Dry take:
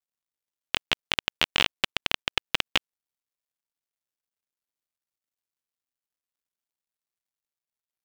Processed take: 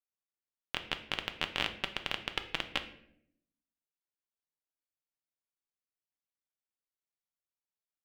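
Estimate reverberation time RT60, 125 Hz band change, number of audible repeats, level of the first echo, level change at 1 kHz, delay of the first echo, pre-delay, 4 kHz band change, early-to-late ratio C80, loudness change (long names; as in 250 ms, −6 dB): 0.70 s, −6.0 dB, no echo audible, no echo audible, −7.0 dB, no echo audible, 4 ms, −9.5 dB, 14.5 dB, −9.0 dB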